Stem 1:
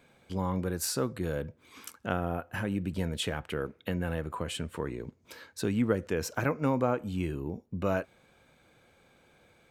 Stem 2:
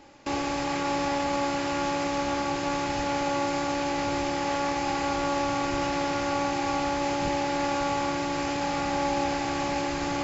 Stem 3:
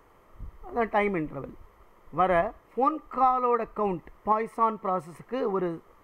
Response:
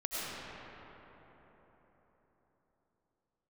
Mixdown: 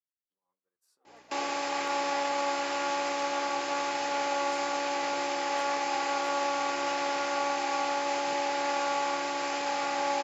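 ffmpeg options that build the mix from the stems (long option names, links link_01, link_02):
-filter_complex "[0:a]alimiter=limit=-21dB:level=0:latency=1:release=477,acompressor=threshold=-35dB:ratio=6,volume=-13dB[link_01];[1:a]aeval=exprs='val(0)+0.00708*(sin(2*PI*60*n/s)+sin(2*PI*2*60*n/s)/2+sin(2*PI*3*60*n/s)/3+sin(2*PI*4*60*n/s)/4+sin(2*PI*5*60*n/s)/5)':channel_layout=same,adelay=1050,volume=-0.5dB[link_02];[2:a]lowpass=frequency=2800:poles=1,alimiter=limit=-24dB:level=0:latency=1,adelay=350,volume=-10dB[link_03];[link_01][link_03]amix=inputs=2:normalize=0,flanger=delay=8.9:depth=4.3:regen=-59:speed=0.26:shape=triangular,acompressor=threshold=-57dB:ratio=2,volume=0dB[link_04];[link_02][link_04]amix=inputs=2:normalize=0,highpass=490,agate=range=-33dB:threshold=-51dB:ratio=3:detection=peak"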